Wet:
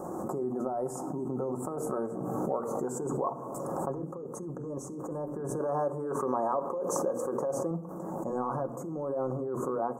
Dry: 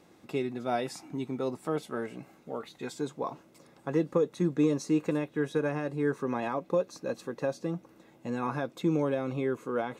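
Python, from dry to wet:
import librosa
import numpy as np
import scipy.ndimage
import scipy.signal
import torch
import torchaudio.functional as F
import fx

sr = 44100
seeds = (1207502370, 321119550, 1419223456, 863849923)

y = fx.low_shelf(x, sr, hz=350.0, db=-9.0, at=(5.59, 7.71))
y = fx.over_compress(y, sr, threshold_db=-34.0, ratio=-1.0)
y = scipy.signal.sosfilt(scipy.signal.ellip(3, 1.0, 70, [1200.0, 7100.0], 'bandstop', fs=sr, output='sos'), y)
y = fx.peak_eq(y, sr, hz=670.0, db=8.5, octaves=2.2)
y = fx.hum_notches(y, sr, base_hz=60, count=8)
y = fx.room_shoebox(y, sr, seeds[0], volume_m3=3600.0, walls='furnished', distance_m=1.0)
y = fx.pre_swell(y, sr, db_per_s=20.0)
y = y * 10.0 ** (-5.0 / 20.0)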